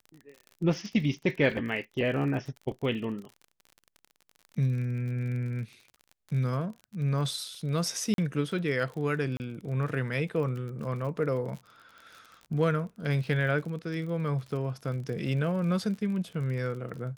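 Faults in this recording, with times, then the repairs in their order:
crackle 44/s -38 dBFS
8.14–8.18 gap 42 ms
9.37–9.4 gap 29 ms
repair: de-click; interpolate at 8.14, 42 ms; interpolate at 9.37, 29 ms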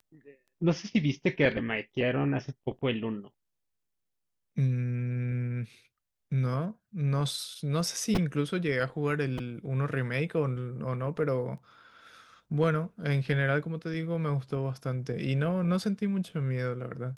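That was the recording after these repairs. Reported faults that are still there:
none

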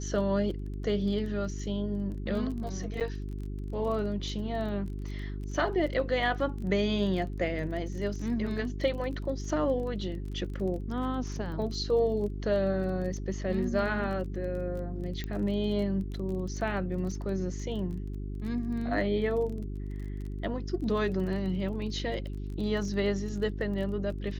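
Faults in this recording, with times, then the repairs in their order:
crackle 25/s -38 dBFS
hum 50 Hz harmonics 8 -36 dBFS
3–3.01 gap 7.9 ms
15.24 pop -22 dBFS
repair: de-click; de-hum 50 Hz, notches 8; interpolate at 3, 7.9 ms

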